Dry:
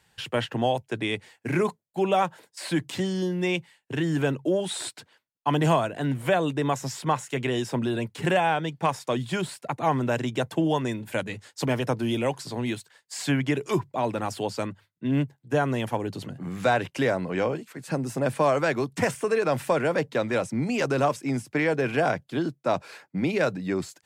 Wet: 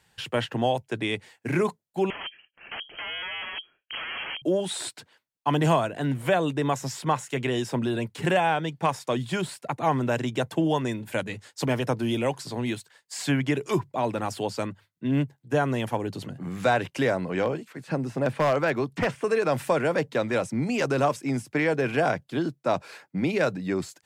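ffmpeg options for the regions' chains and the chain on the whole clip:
-filter_complex "[0:a]asettb=1/sr,asplit=3[s0][s1][s2];[s0]atrim=end=2.104[s3];[s1]atrim=start=2.1:end=4.42,asetpts=PTS-STARTPTS,afade=t=in:d=0.004:c=qsin,afade=t=out:st=2.316:d=0.004:c=qsin,equalizer=f=2200:t=o:w=0.72:g=-13.5,aeval=exprs='(mod(25.1*val(0)+1,2)-1)/25.1':c=same,lowpass=f=2800:t=q:w=0.5098,lowpass=f=2800:t=q:w=0.6013,lowpass=f=2800:t=q:w=0.9,lowpass=f=2800:t=q:w=2.563,afreqshift=-3300[s4];[s2]atrim=start=4.416[s5];[s3][s4]acrossfade=d=0.004:c1=hsin:c2=qsin[s6];[s6][s5]acrossfade=d=0.004:c1=qsin:c2=hsin,asettb=1/sr,asplit=3[s7][s8][s9];[s7]atrim=end=17.424[s10];[s8]atrim=start=17.42:end=19.24,asetpts=PTS-STARTPTS,afade=t=in:d=0.004:c=qsin,afade=t=out:st=1.816:d=0.004:c=qsin,acrossover=split=4400[s11][s12];[s12]acompressor=threshold=0.00141:ratio=4:attack=1:release=60[s13];[s11][s13]amix=inputs=2:normalize=0,aeval=exprs='0.158*(abs(mod(val(0)/0.158+3,4)-2)-1)':c=same[s14];[s9]atrim=start=19.236[s15];[s10][s14]acrossfade=d=0.004:c1=hsin:c2=qsin[s16];[s16][s15]acrossfade=d=0.004:c1=qsin:c2=hsin"

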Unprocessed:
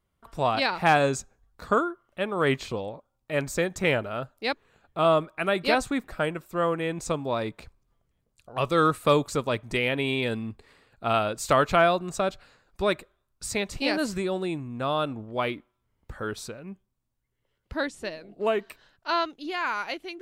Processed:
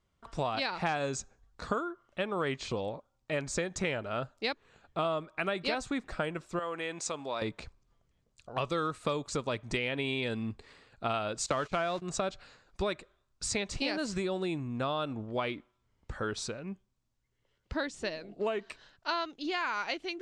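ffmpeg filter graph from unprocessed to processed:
-filter_complex "[0:a]asettb=1/sr,asplit=3[s0][s1][s2];[s0]atrim=end=6.594[s3];[s1]atrim=start=6.59:end=7.42,asetpts=PTS-STARTPTS,afade=t=in:d=0.004:c=qsin,afade=t=out:st=0.826:d=0.004:c=qsin,acompressor=threshold=0.0355:ratio=2:attack=3.2:release=140:knee=1:detection=peak,highpass=f=700:p=1[s4];[s2]atrim=start=7.416[s5];[s3][s4]acrossfade=d=0.004:c1=hsin:c2=qsin[s6];[s6][s5]acrossfade=d=0.004:c1=qsin:c2=hsin,asettb=1/sr,asplit=3[s7][s8][s9];[s7]atrim=end=11.464[s10];[s8]atrim=start=11.46:end=12.02,asetpts=PTS-STARTPTS,afade=t=in:d=0.004:c=qsin,afade=t=out:st=0.556:d=0.004:c=qsin,aeval=exprs='val(0)+0.5*0.02*sgn(val(0))':c=same,agate=range=0.0891:threshold=0.0355:ratio=16:release=100:detection=peak[s11];[s9]atrim=start=12.016[s12];[s10][s11]acrossfade=d=0.004:c1=hsin:c2=qsin[s13];[s13][s12]acrossfade=d=0.004:c1=qsin:c2=hsin,lowpass=f=7400:w=0.5412,lowpass=f=7400:w=1.3066,highshelf=f=4200:g=5.5,acompressor=threshold=0.0355:ratio=6"

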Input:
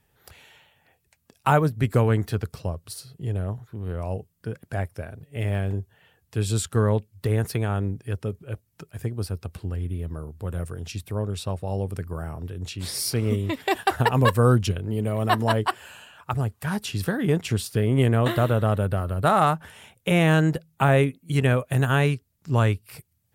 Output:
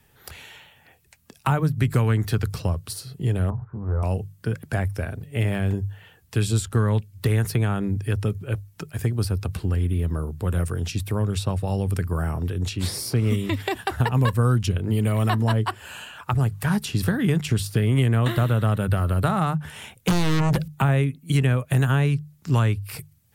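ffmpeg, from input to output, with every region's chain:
-filter_complex "[0:a]asettb=1/sr,asplit=3[s0][s1][s2];[s0]atrim=end=3.504[s3];[s1]atrim=start=3.5:end=4.03,asetpts=PTS-STARTPTS,afade=t=in:d=0.004:c=qsin,afade=t=out:st=0.526:d=0.004:c=qsin,lowpass=f=1200:w=0.5412,lowpass=f=1200:w=1.3066,equalizer=f=320:w=0.86:g=-9.5,asplit=2[s4][s5];[s5]adelay=14,volume=0.596[s6];[s4][s6]amix=inputs=2:normalize=0,atrim=end_sample=23373[s7];[s2]atrim=start=4.026[s8];[s3][s7]acrossfade=d=0.004:c1=hsin:c2=qsin[s9];[s9][s8]acrossfade=d=0.004:c1=qsin:c2=hsin,asettb=1/sr,asplit=3[s10][s11][s12];[s10]atrim=end=20.084[s13];[s11]atrim=start=20.08:end=20.68,asetpts=PTS-STARTPTS,afade=t=in:d=0.004:c=qsin,afade=t=out:st=0.596:d=0.004:c=qsin,bandreject=f=650:w=16,acompressor=threshold=0.0224:ratio=2:attack=3.2:release=140:knee=1:detection=peak,aeval=exprs='0.158*sin(PI/2*5.01*val(0)/0.158)':c=same[s14];[s12]atrim=start=20.676[s15];[s13][s14]acrossfade=d=0.004:c1=hsin:c2=qsin[s16];[s16][s15]acrossfade=d=0.004:c1=qsin:c2=hsin,equalizer=f=600:w=1.4:g=-3.5,bandreject=f=50:t=h:w=6,bandreject=f=100:t=h:w=6,bandreject=f=150:t=h:w=6,acrossover=split=200|1100[s17][s18][s19];[s17]acompressor=threshold=0.0398:ratio=4[s20];[s18]acompressor=threshold=0.0141:ratio=4[s21];[s19]acompressor=threshold=0.01:ratio=4[s22];[s20][s21][s22]amix=inputs=3:normalize=0,volume=2.66"

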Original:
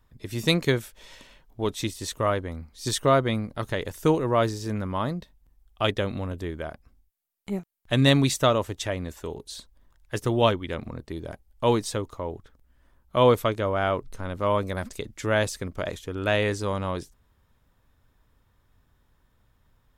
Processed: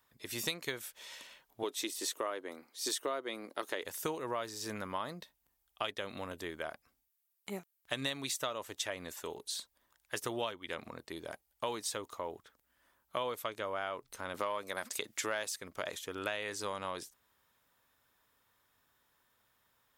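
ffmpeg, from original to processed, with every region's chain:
-filter_complex "[0:a]asettb=1/sr,asplit=3[s0][s1][s2];[s0]atrim=end=1.634[s3];[s1]atrim=start=1.63:end=3.83,asetpts=PTS-STARTPTS,afade=t=in:d=0.004:c=qsin,afade=t=out:st=2.196:d=0.004:c=qsin,highpass=f=330:t=q:w=2.2,deesser=0.35[s4];[s2]atrim=start=3.826[s5];[s3][s4]acrossfade=d=0.004:c1=hsin:c2=qsin[s6];[s6][s5]acrossfade=d=0.004:c1=qsin:c2=hsin,asettb=1/sr,asplit=3[s7][s8][s9];[s7]atrim=end=14.344[s10];[s8]atrim=start=14.34:end=15.56,asetpts=PTS-STARTPTS,afade=t=in:d=0.004:c=qsin,afade=t=out:st=1.216:d=0.004:c=qsin,highpass=f=220:p=1,acontrast=73[s11];[s9]atrim=start=15.556[s12];[s10][s11]acrossfade=d=0.004:c1=hsin:c2=qsin[s13];[s13][s12]acrossfade=d=0.004:c1=qsin:c2=hsin,highpass=f=960:p=1,highshelf=f=11000:g=7,acompressor=threshold=0.0224:ratio=8"

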